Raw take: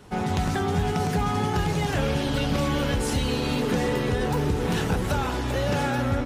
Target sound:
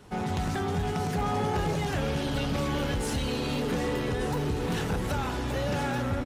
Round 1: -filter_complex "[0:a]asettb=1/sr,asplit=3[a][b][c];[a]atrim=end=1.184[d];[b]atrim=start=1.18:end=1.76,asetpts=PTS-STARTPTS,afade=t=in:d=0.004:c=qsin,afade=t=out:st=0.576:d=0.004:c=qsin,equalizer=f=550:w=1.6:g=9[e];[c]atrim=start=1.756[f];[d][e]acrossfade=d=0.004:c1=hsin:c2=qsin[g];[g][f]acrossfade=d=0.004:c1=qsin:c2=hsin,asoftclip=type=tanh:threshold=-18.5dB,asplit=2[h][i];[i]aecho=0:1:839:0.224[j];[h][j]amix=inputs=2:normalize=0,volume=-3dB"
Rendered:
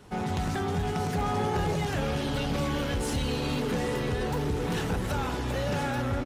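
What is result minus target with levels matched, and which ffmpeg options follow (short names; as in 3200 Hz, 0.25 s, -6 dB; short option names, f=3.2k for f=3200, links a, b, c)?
echo 0.348 s early
-filter_complex "[0:a]asettb=1/sr,asplit=3[a][b][c];[a]atrim=end=1.184[d];[b]atrim=start=1.18:end=1.76,asetpts=PTS-STARTPTS,afade=t=in:d=0.004:c=qsin,afade=t=out:st=0.576:d=0.004:c=qsin,equalizer=f=550:w=1.6:g=9[e];[c]atrim=start=1.756[f];[d][e]acrossfade=d=0.004:c1=hsin:c2=qsin[g];[g][f]acrossfade=d=0.004:c1=qsin:c2=hsin,asoftclip=type=tanh:threshold=-18.5dB,asplit=2[h][i];[i]aecho=0:1:1187:0.224[j];[h][j]amix=inputs=2:normalize=0,volume=-3dB"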